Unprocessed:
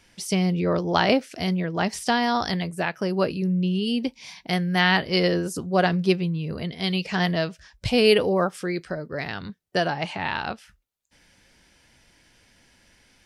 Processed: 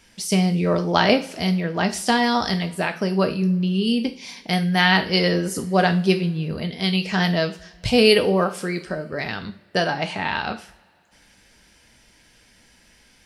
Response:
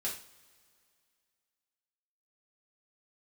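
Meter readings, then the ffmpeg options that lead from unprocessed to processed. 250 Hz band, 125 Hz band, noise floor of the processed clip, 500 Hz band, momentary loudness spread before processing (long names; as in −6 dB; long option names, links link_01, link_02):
+3.0 dB, +3.0 dB, −56 dBFS, +2.0 dB, 11 LU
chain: -filter_complex "[0:a]asplit=2[link_01][link_02];[1:a]atrim=start_sample=2205,highshelf=frequency=4300:gain=7[link_03];[link_02][link_03]afir=irnorm=-1:irlink=0,volume=-6.5dB[link_04];[link_01][link_04]amix=inputs=2:normalize=0"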